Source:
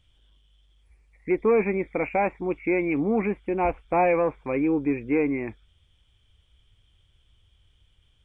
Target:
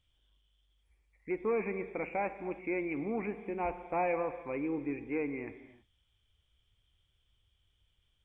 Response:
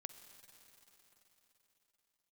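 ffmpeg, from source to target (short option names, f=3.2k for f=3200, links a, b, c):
-filter_complex "[0:a]lowshelf=f=410:g=-3.5[a];[1:a]atrim=start_sample=2205,afade=t=out:st=0.39:d=0.01,atrim=end_sample=17640[b];[a][b]afir=irnorm=-1:irlink=0,volume=-4dB"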